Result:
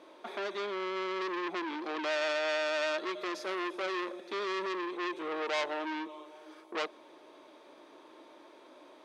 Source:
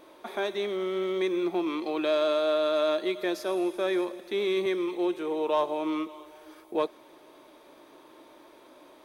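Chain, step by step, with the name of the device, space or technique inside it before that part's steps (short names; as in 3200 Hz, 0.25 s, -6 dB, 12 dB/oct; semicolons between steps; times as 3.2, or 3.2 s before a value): public-address speaker with an overloaded transformer (core saturation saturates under 2900 Hz; BPF 220–7000 Hz); gain -1.5 dB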